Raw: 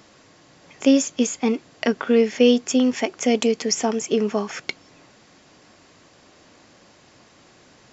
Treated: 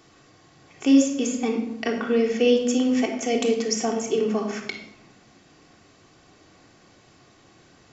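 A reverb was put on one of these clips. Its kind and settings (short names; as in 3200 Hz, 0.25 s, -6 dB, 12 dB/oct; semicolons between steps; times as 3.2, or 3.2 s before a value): shoebox room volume 2600 m³, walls furnished, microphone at 3.5 m; gain -6 dB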